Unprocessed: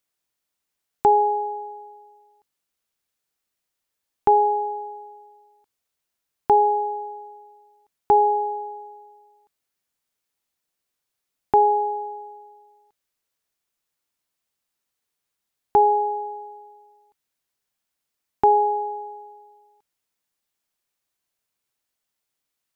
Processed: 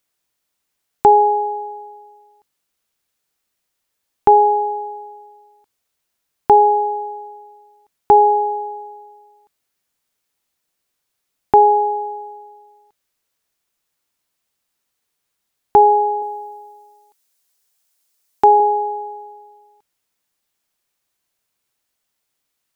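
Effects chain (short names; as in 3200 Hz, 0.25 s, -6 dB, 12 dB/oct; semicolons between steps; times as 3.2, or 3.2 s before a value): 16.22–18.6 tone controls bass -9 dB, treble +9 dB; gain +6 dB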